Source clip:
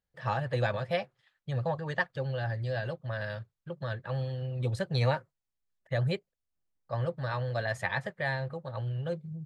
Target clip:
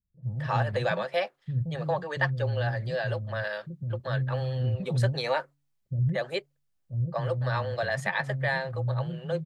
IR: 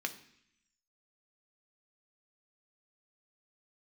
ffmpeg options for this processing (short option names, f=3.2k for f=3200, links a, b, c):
-filter_complex "[0:a]bandreject=f=142.7:t=h:w=4,bandreject=f=285.4:t=h:w=4,asplit=2[a][b];[b]alimiter=limit=-23.5dB:level=0:latency=1,volume=-2dB[c];[a][c]amix=inputs=2:normalize=0,acrossover=split=280[d][e];[e]adelay=230[f];[d][f]amix=inputs=2:normalize=0"